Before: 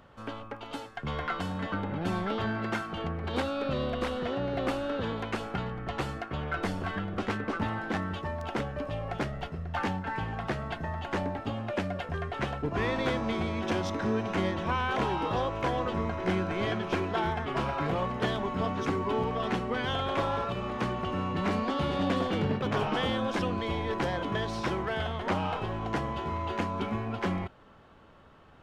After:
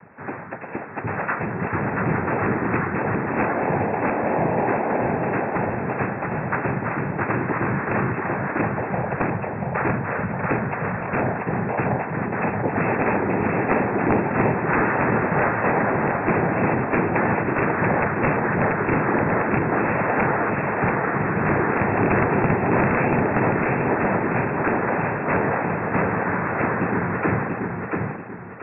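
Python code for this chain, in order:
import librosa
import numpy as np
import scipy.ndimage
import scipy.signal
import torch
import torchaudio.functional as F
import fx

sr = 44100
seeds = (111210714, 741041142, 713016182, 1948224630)

y = fx.noise_vocoder(x, sr, seeds[0], bands=6)
y = (np.mod(10.0 ** (19.0 / 20.0) * y + 1.0, 2.0) - 1.0) / 10.0 ** (19.0 / 20.0)
y = fx.brickwall_lowpass(y, sr, high_hz=2700.0)
y = fx.echo_feedback(y, sr, ms=685, feedback_pct=36, wet_db=-3)
y = F.gain(torch.from_numpy(y), 8.5).numpy()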